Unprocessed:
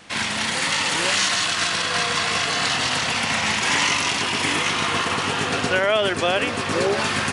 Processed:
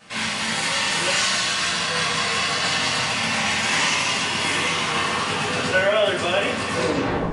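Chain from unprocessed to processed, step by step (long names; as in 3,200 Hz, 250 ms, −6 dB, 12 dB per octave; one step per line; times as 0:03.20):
turntable brake at the end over 0.55 s
coupled-rooms reverb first 0.49 s, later 2 s, from −17 dB, DRR −7.5 dB
level −8.5 dB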